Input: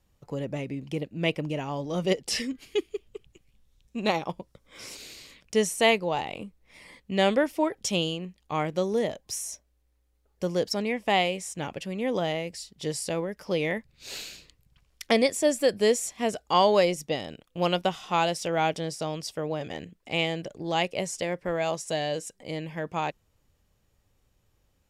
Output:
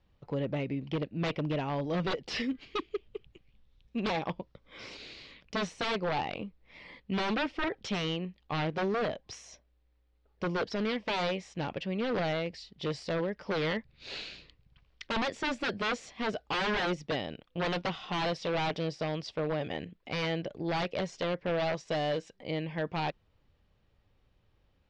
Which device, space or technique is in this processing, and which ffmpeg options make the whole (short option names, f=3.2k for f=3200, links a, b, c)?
synthesiser wavefolder: -af "aeval=exprs='0.0562*(abs(mod(val(0)/0.0562+3,4)-2)-1)':c=same,lowpass=f=4.3k:w=0.5412,lowpass=f=4.3k:w=1.3066"